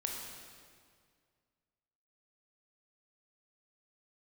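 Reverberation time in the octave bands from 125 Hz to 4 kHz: 2.4 s, 2.1 s, 2.1 s, 1.9 s, 1.8 s, 1.7 s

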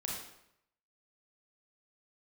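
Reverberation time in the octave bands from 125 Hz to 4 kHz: 0.80 s, 0.75 s, 0.75 s, 0.80 s, 0.70 s, 0.65 s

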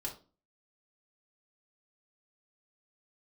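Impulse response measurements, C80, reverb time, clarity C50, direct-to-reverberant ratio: 16.5 dB, 0.35 s, 10.5 dB, -2.5 dB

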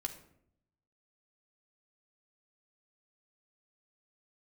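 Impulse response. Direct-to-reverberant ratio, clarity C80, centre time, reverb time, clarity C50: 2.5 dB, 14.0 dB, 11 ms, 0.70 s, 11.0 dB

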